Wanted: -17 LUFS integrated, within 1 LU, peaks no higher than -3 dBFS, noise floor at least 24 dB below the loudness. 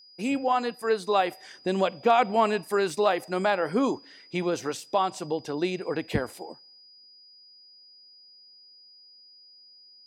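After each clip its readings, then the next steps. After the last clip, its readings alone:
steady tone 4900 Hz; tone level -51 dBFS; loudness -27.0 LUFS; peak -10.5 dBFS; loudness target -17.0 LUFS
-> notch 4900 Hz, Q 30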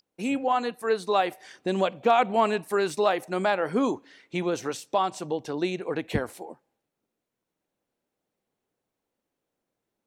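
steady tone none; loudness -27.0 LUFS; peak -10.5 dBFS; loudness target -17.0 LUFS
-> gain +10 dB; limiter -3 dBFS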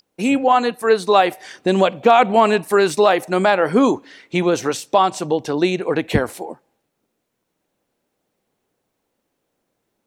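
loudness -17.5 LUFS; peak -3.0 dBFS; noise floor -75 dBFS

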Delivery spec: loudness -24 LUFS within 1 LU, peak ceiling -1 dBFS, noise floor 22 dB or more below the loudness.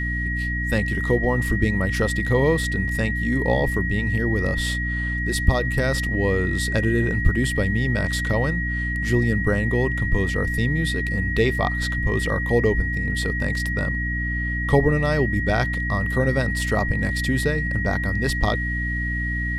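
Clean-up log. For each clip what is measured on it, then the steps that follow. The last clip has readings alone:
hum 60 Hz; harmonics up to 300 Hz; hum level -24 dBFS; steady tone 1900 Hz; tone level -26 dBFS; loudness -22.0 LUFS; peak -4.0 dBFS; loudness target -24.0 LUFS
-> de-hum 60 Hz, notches 5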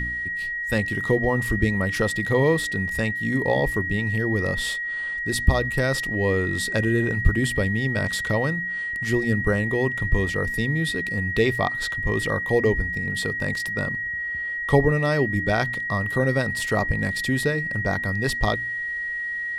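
hum none; steady tone 1900 Hz; tone level -26 dBFS
-> notch 1900 Hz, Q 30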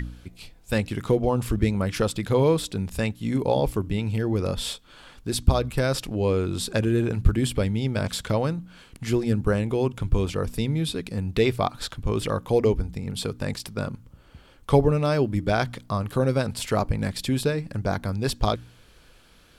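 steady tone none; loudness -25.5 LUFS; peak -6.0 dBFS; loudness target -24.0 LUFS
-> gain +1.5 dB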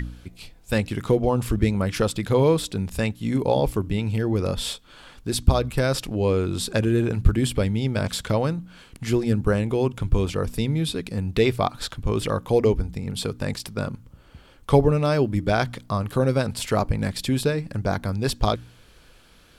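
loudness -24.0 LUFS; peak -4.5 dBFS; noise floor -52 dBFS

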